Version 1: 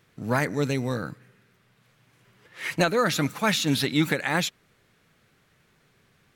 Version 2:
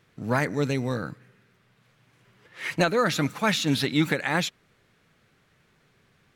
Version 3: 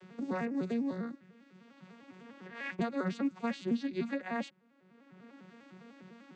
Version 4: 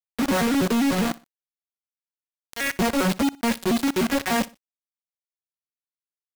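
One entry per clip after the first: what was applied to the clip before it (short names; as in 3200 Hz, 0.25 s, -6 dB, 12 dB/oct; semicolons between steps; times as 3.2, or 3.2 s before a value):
high shelf 8700 Hz -7 dB
arpeggiated vocoder major triad, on F#3, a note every 0.1 s; three-band squash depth 70%; gain -8 dB
companded quantiser 2-bit; feedback echo 61 ms, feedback 32%, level -21 dB; gain +6 dB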